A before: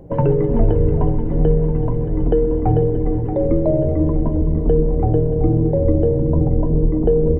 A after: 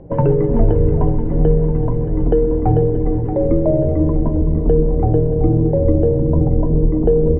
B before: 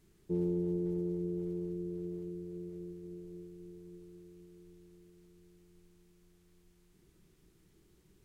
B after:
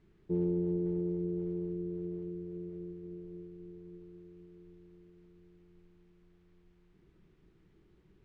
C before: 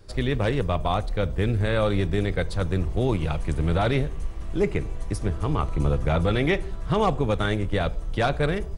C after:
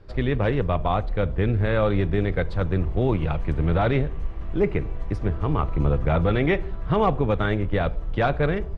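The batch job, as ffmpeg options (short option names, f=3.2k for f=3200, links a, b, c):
-af "lowpass=2.6k,volume=1.5dB"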